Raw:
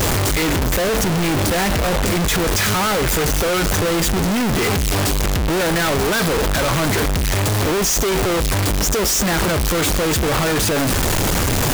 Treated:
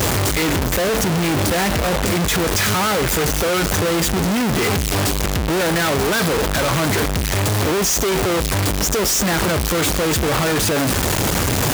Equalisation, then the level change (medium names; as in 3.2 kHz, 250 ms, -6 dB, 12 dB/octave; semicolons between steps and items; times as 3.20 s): high-pass 55 Hz; 0.0 dB